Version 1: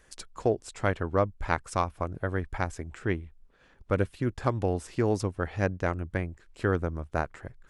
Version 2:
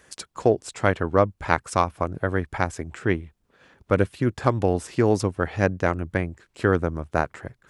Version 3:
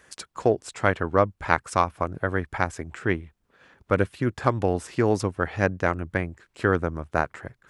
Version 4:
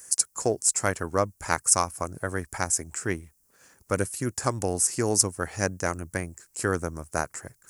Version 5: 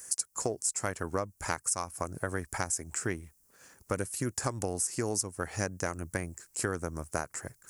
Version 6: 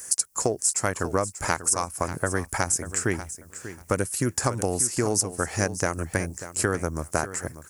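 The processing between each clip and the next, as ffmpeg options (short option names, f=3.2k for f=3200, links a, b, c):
-af "highpass=90,volume=6.5dB"
-af "equalizer=f=1.5k:t=o:w=1.8:g=3.5,volume=-2.5dB"
-af "aexciter=amount=14:drive=6.9:freq=5.4k,volume=-4.5dB"
-af "acompressor=threshold=-28dB:ratio=6"
-af "aecho=1:1:590|1180:0.224|0.0381,volume=7.5dB"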